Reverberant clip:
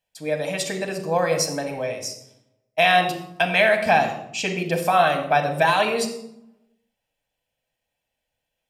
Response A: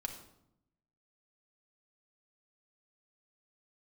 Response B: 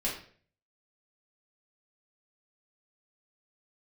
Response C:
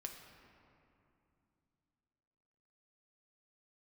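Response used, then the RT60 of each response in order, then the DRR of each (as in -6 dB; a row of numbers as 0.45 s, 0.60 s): A; 0.75 s, 0.50 s, 2.8 s; 3.5 dB, -6.0 dB, 2.5 dB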